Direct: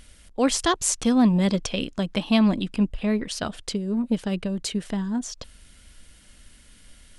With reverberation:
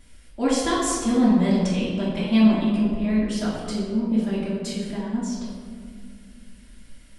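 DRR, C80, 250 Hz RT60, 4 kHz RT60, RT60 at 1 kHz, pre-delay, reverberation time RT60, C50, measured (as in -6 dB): -11.5 dB, 2.0 dB, 3.1 s, 0.95 s, 1.7 s, 3 ms, 2.1 s, -0.5 dB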